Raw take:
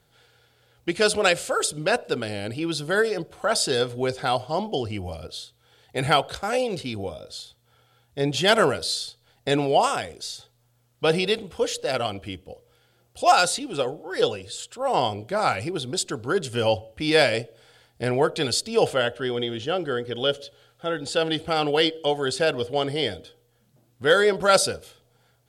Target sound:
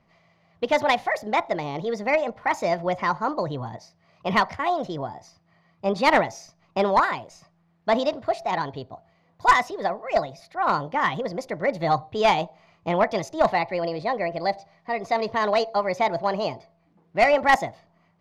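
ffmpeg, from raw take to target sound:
ffmpeg -i in.wav -af "lowpass=1700,aeval=exprs='0.422*(cos(1*acos(clip(val(0)/0.422,-1,1)))-cos(1*PI/2))+0.0668*(cos(4*acos(clip(val(0)/0.422,-1,1)))-cos(4*PI/2))+0.0473*(cos(6*acos(clip(val(0)/0.422,-1,1)))-cos(6*PI/2))+0.00841*(cos(8*acos(clip(val(0)/0.422,-1,1)))-cos(8*PI/2))':channel_layout=same,asetrate=61740,aresample=44100,volume=1dB" out.wav

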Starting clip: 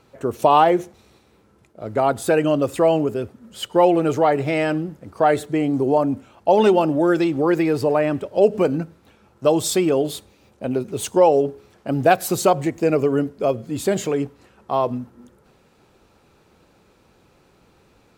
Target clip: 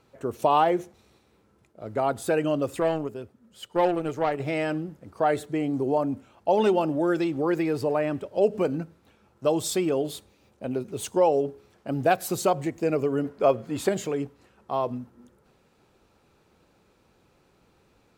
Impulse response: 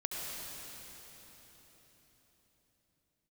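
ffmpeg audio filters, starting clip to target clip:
-filter_complex "[0:a]asettb=1/sr,asplit=3[link_01][link_02][link_03];[link_01]atrim=end=2.804[link_04];[link_02]atrim=start=2.8:end=4.4,asetpts=PTS-STARTPTS,afade=type=in:duration=0.004:curve=qsin,afade=type=out:start_time=1.596:duration=0.004:curve=qsin,aeval=exprs='0.668*(cos(1*acos(clip(val(0)/0.668,-1,1)))-cos(1*PI/2))+0.0473*(cos(3*acos(clip(val(0)/0.668,-1,1)))-cos(3*PI/2))+0.0299*(cos(7*acos(clip(val(0)/0.668,-1,1)))-cos(7*PI/2))':channel_layout=same[link_05];[link_03]atrim=start=4.396[link_06];[link_04][link_05]acrossfade=duration=0.004:curve1=hsin:curve2=qsin[link_07];[link_07][link_06]acrossfade=duration=0.004:curve1=qsin:curve2=hsin,asettb=1/sr,asplit=3[link_08][link_09][link_10];[link_08]atrim=end=13.244[link_11];[link_09]atrim=start=13.24:end=13.89,asetpts=PTS-STARTPTS,afade=type=in:duration=0.004:curve=qsin,afade=type=out:start_time=0.646:duration=0.004:curve=qsin,equalizer=frequency=1200:width_type=o:width=2.8:gain=9.5[link_12];[link_10]atrim=start=13.886[link_13];[link_11][link_12]acrossfade=duration=0.004:curve1=hsin:curve2=qsin[link_14];[link_14][link_13]acrossfade=duration=0.004:curve1=qsin:curve2=hsin,volume=-6.5dB"

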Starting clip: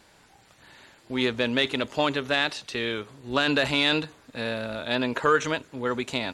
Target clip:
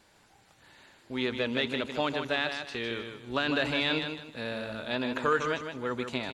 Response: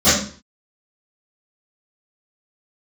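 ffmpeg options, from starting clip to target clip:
-filter_complex "[0:a]acrossover=split=4700[link_01][link_02];[link_02]acompressor=threshold=-45dB:ratio=4:attack=1:release=60[link_03];[link_01][link_03]amix=inputs=2:normalize=0,aecho=1:1:155|310|465|620:0.447|0.13|0.0376|0.0109,volume=-5.5dB"

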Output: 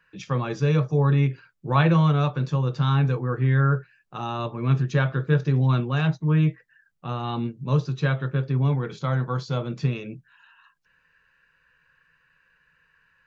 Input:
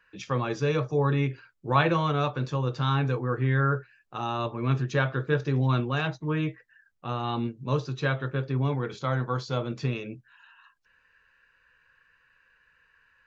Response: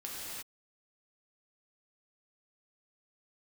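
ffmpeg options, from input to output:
-af "equalizer=frequency=160:width_type=o:width=0.48:gain=11"

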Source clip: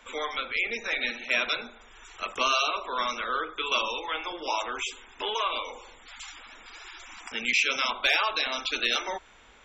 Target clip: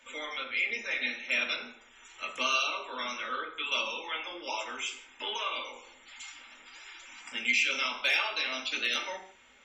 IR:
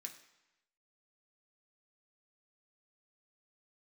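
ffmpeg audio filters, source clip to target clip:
-filter_complex "[0:a]bandreject=frequency=46.02:width_type=h:width=4,bandreject=frequency=92.04:width_type=h:width=4,bandreject=frequency=138.06:width_type=h:width=4,bandreject=frequency=184.08:width_type=h:width=4,bandreject=frequency=230.1:width_type=h:width=4,bandreject=frequency=276.12:width_type=h:width=4,bandreject=frequency=322.14:width_type=h:width=4,bandreject=frequency=368.16:width_type=h:width=4[link_01];[1:a]atrim=start_sample=2205,afade=type=out:start_time=0.28:duration=0.01,atrim=end_sample=12789,asetrate=52920,aresample=44100[link_02];[link_01][link_02]afir=irnorm=-1:irlink=0,volume=3.5dB"

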